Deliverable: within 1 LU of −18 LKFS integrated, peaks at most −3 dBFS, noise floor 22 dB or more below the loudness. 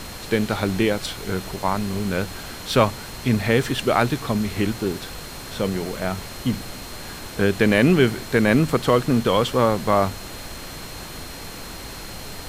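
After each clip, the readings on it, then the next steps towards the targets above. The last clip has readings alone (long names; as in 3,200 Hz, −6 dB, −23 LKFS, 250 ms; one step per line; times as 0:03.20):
interfering tone 4,200 Hz; level of the tone −43 dBFS; background noise floor −36 dBFS; target noise floor −44 dBFS; integrated loudness −22.0 LKFS; sample peak −2.5 dBFS; target loudness −18.0 LKFS
→ notch filter 4,200 Hz, Q 30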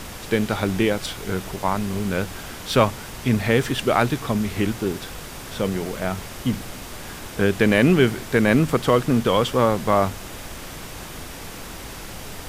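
interfering tone none found; background noise floor −37 dBFS; target noise floor −44 dBFS
→ noise reduction from a noise print 7 dB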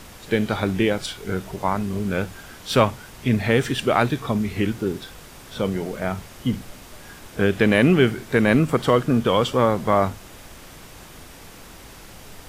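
background noise floor −43 dBFS; target noise floor −44 dBFS
→ noise reduction from a noise print 6 dB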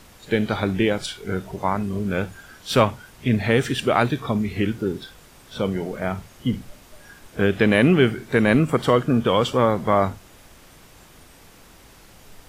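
background noise floor −49 dBFS; integrated loudness −22.0 LKFS; sample peak −2.5 dBFS; target loudness −18.0 LKFS
→ level +4 dB
brickwall limiter −3 dBFS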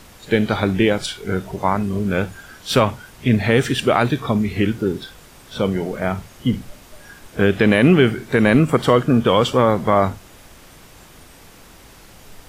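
integrated loudness −18.5 LKFS; sample peak −3.0 dBFS; background noise floor −45 dBFS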